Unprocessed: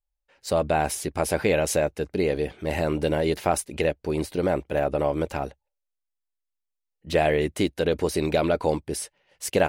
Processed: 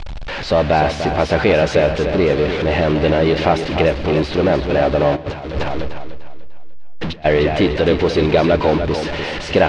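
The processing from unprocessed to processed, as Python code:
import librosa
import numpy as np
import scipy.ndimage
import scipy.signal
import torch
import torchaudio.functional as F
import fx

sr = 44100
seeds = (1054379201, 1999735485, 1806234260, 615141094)

y = x + 0.5 * 10.0 ** (-25.0 / 20.0) * np.sign(x)
y = scipy.signal.sosfilt(scipy.signal.butter(4, 4300.0, 'lowpass', fs=sr, output='sos'), y)
y = fx.echo_feedback(y, sr, ms=298, feedback_pct=42, wet_db=-8.0)
y = fx.over_compress(y, sr, threshold_db=-30.0, ratio=-0.5, at=(5.15, 7.24), fade=0.02)
y = y + 10.0 ** (-19.5 / 20.0) * np.pad(y, (int(121 * sr / 1000.0), 0))[:len(y)]
y = y * 10.0 ** (6.0 / 20.0)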